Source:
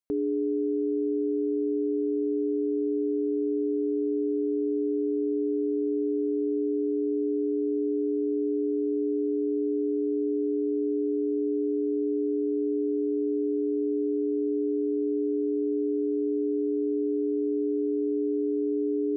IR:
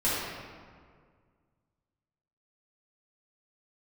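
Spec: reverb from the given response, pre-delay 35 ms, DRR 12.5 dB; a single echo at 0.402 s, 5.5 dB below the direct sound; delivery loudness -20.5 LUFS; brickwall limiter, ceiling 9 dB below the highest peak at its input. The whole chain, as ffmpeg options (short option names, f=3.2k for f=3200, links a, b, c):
-filter_complex "[0:a]alimiter=level_in=6dB:limit=-24dB:level=0:latency=1,volume=-6dB,aecho=1:1:402:0.531,asplit=2[a][b];[1:a]atrim=start_sample=2205,adelay=35[c];[b][c]afir=irnorm=-1:irlink=0,volume=-24.5dB[d];[a][d]amix=inputs=2:normalize=0,volume=10dB"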